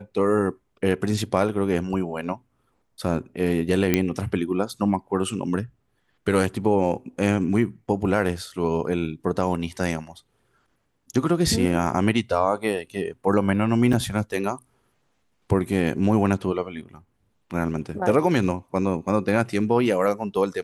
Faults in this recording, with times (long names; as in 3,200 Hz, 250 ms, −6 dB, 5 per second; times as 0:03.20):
0:03.94: click −5 dBFS
0:13.93: drop-out 3.7 ms